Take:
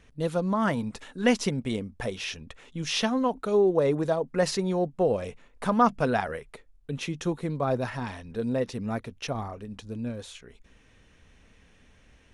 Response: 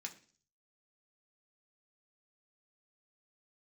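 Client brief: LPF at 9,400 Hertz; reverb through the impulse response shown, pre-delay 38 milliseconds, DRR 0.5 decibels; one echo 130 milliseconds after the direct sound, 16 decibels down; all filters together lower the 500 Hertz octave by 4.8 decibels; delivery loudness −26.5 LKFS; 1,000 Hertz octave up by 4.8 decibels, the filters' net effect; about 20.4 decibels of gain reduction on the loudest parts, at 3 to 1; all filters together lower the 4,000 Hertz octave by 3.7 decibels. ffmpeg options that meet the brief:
-filter_complex "[0:a]lowpass=9400,equalizer=frequency=500:width_type=o:gain=-8.5,equalizer=frequency=1000:width_type=o:gain=9,equalizer=frequency=4000:width_type=o:gain=-5.5,acompressor=threshold=-40dB:ratio=3,aecho=1:1:130:0.158,asplit=2[link_01][link_02];[1:a]atrim=start_sample=2205,adelay=38[link_03];[link_02][link_03]afir=irnorm=-1:irlink=0,volume=2.5dB[link_04];[link_01][link_04]amix=inputs=2:normalize=0,volume=12dB"

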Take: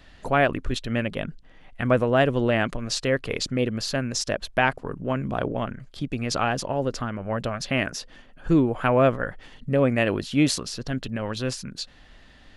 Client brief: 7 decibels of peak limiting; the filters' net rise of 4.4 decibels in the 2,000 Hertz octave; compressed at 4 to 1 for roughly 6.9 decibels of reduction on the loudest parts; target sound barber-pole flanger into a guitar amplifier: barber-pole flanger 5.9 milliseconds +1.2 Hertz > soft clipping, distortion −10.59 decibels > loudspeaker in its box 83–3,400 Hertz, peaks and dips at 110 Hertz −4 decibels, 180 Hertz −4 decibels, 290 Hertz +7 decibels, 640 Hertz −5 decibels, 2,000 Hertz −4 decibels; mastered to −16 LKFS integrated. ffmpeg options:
ffmpeg -i in.wav -filter_complex "[0:a]equalizer=frequency=2000:width_type=o:gain=8,acompressor=threshold=-21dB:ratio=4,alimiter=limit=-16dB:level=0:latency=1,asplit=2[link_01][link_02];[link_02]adelay=5.9,afreqshift=1.2[link_03];[link_01][link_03]amix=inputs=2:normalize=1,asoftclip=threshold=-27.5dB,highpass=83,equalizer=frequency=110:width_type=q:width=4:gain=-4,equalizer=frequency=180:width_type=q:width=4:gain=-4,equalizer=frequency=290:width_type=q:width=4:gain=7,equalizer=frequency=640:width_type=q:width=4:gain=-5,equalizer=frequency=2000:width_type=q:width=4:gain=-4,lowpass=frequency=3400:width=0.5412,lowpass=frequency=3400:width=1.3066,volume=19.5dB" out.wav

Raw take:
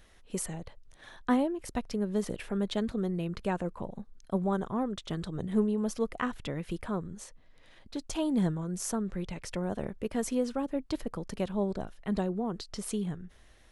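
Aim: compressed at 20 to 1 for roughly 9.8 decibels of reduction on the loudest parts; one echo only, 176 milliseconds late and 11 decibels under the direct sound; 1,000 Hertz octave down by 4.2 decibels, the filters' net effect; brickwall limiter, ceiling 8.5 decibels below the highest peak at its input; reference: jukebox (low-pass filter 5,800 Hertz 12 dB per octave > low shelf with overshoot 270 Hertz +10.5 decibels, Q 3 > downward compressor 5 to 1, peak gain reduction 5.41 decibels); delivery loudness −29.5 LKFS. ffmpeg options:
ffmpeg -i in.wav -af "equalizer=frequency=1000:width_type=o:gain=-4,acompressor=threshold=-31dB:ratio=20,alimiter=level_in=4.5dB:limit=-24dB:level=0:latency=1,volume=-4.5dB,lowpass=5800,lowshelf=frequency=270:width_type=q:width=3:gain=10.5,aecho=1:1:176:0.282,acompressor=threshold=-21dB:ratio=5,volume=-2dB" out.wav

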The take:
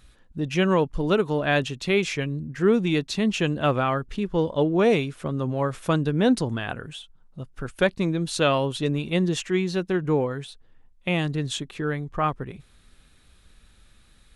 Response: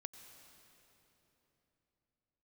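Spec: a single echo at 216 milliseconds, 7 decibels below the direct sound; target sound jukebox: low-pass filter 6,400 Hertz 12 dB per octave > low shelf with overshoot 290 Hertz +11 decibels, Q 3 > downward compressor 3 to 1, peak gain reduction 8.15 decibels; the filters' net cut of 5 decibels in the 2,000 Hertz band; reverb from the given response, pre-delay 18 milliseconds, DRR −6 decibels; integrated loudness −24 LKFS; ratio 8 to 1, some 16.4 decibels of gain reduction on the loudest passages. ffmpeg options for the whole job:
-filter_complex "[0:a]equalizer=frequency=2000:width_type=o:gain=-6.5,acompressor=threshold=-33dB:ratio=8,aecho=1:1:216:0.447,asplit=2[link_01][link_02];[1:a]atrim=start_sample=2205,adelay=18[link_03];[link_02][link_03]afir=irnorm=-1:irlink=0,volume=10.5dB[link_04];[link_01][link_04]amix=inputs=2:normalize=0,lowpass=6400,lowshelf=frequency=290:width_type=q:width=3:gain=11,acompressor=threshold=-18dB:ratio=3,volume=-1.5dB"

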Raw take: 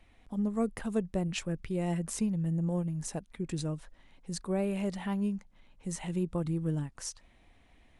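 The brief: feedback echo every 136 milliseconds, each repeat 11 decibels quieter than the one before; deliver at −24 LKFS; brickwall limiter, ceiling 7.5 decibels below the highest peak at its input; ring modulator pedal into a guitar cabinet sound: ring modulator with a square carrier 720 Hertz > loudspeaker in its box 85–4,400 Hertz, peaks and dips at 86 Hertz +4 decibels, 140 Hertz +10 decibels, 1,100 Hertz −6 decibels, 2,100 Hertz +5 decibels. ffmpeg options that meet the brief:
ffmpeg -i in.wav -af "alimiter=level_in=2.5dB:limit=-24dB:level=0:latency=1,volume=-2.5dB,aecho=1:1:136|272|408:0.282|0.0789|0.0221,aeval=exprs='val(0)*sgn(sin(2*PI*720*n/s))':channel_layout=same,highpass=85,equalizer=frequency=86:width_type=q:width=4:gain=4,equalizer=frequency=140:width_type=q:width=4:gain=10,equalizer=frequency=1100:width_type=q:width=4:gain=-6,equalizer=frequency=2100:width_type=q:width=4:gain=5,lowpass=frequency=4400:width=0.5412,lowpass=frequency=4400:width=1.3066,volume=11dB" out.wav

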